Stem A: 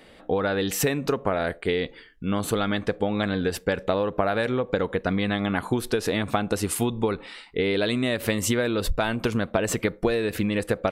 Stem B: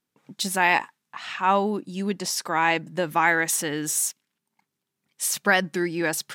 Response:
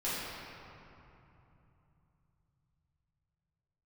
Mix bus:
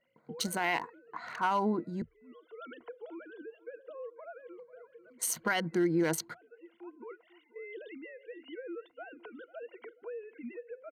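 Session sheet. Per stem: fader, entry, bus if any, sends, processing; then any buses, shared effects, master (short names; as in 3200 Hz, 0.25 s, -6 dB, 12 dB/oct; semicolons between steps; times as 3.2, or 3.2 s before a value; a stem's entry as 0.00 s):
-19.0 dB, 0.00 s, no send, echo send -19 dB, sine-wave speech; limiter -20 dBFS, peak gain reduction 9.5 dB; auto duck -16 dB, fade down 1.15 s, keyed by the second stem
-2.0 dB, 0.00 s, muted 2.02–4.45, no send, no echo send, Wiener smoothing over 15 samples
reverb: off
echo: feedback echo 0.492 s, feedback 27%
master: ripple EQ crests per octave 1.9, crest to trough 10 dB; limiter -20.5 dBFS, peak gain reduction 11.5 dB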